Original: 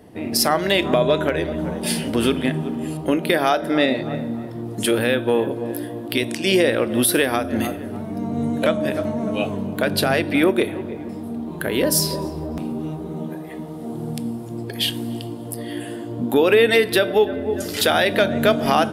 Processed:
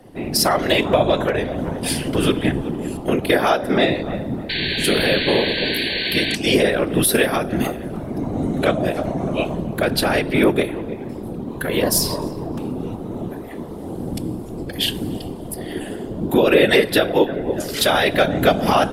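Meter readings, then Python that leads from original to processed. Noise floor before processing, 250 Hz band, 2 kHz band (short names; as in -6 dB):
-32 dBFS, +0.5 dB, +2.0 dB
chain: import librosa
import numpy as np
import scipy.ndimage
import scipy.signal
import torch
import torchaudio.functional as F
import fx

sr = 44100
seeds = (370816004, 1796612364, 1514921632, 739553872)

y = fx.whisperise(x, sr, seeds[0])
y = fx.spec_paint(y, sr, seeds[1], shape='noise', start_s=4.49, length_s=1.87, low_hz=1500.0, high_hz=4600.0, level_db=-25.0)
y = y * librosa.db_to_amplitude(1.0)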